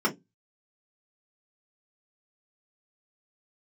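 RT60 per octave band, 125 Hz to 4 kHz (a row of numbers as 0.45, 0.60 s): 0.35, 0.25, 0.20, 0.15, 0.10, 0.15 s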